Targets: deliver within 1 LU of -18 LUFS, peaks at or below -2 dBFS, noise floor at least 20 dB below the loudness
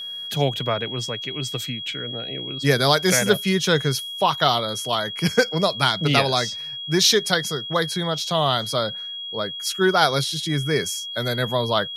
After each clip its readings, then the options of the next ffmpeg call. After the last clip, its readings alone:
steady tone 3.3 kHz; tone level -30 dBFS; loudness -21.5 LUFS; peak level -1.5 dBFS; loudness target -18.0 LUFS
-> -af "bandreject=f=3300:w=30"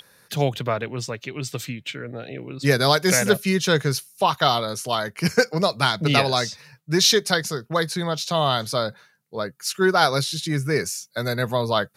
steady tone not found; loudness -22.0 LUFS; peak level -2.0 dBFS; loudness target -18.0 LUFS
-> -af "volume=1.58,alimiter=limit=0.794:level=0:latency=1"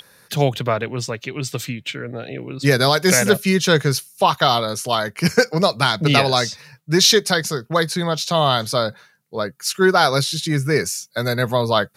loudness -18.5 LUFS; peak level -2.0 dBFS; noise floor -57 dBFS

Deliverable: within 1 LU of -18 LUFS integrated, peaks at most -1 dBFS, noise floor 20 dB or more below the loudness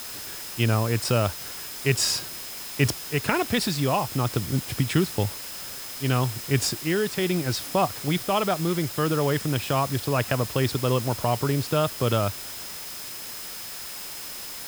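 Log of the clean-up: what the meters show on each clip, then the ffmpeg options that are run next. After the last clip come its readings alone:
steady tone 5.1 kHz; tone level -43 dBFS; noise floor -37 dBFS; noise floor target -46 dBFS; loudness -26.0 LUFS; peak level -5.5 dBFS; loudness target -18.0 LUFS
-> -af "bandreject=f=5100:w=30"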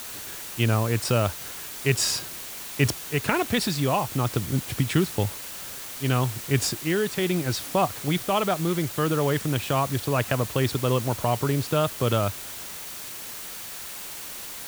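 steady tone not found; noise floor -38 dBFS; noise floor target -46 dBFS
-> -af "afftdn=nr=8:nf=-38"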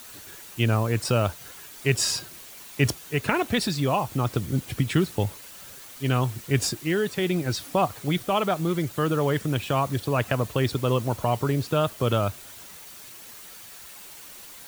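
noise floor -44 dBFS; noise floor target -46 dBFS
-> -af "afftdn=nr=6:nf=-44"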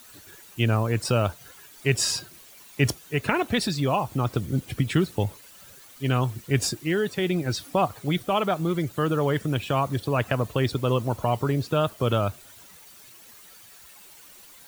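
noise floor -49 dBFS; loudness -25.5 LUFS; peak level -6.0 dBFS; loudness target -18.0 LUFS
-> -af "volume=2.37,alimiter=limit=0.891:level=0:latency=1"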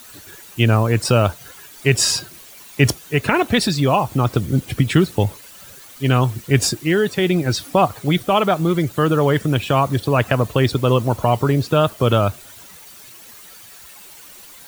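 loudness -18.0 LUFS; peak level -1.0 dBFS; noise floor -42 dBFS

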